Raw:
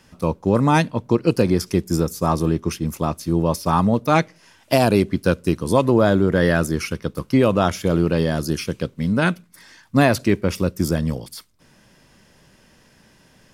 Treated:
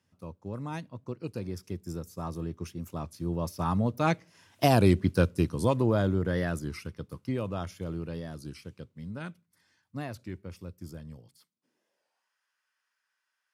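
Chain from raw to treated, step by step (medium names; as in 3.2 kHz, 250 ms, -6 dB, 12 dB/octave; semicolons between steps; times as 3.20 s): Doppler pass-by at 4.89 s, 7 m/s, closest 5.1 m; high-pass sweep 91 Hz -> 1.3 kHz, 11.21–12.37 s; warped record 33 1/3 rpm, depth 100 cents; trim -6.5 dB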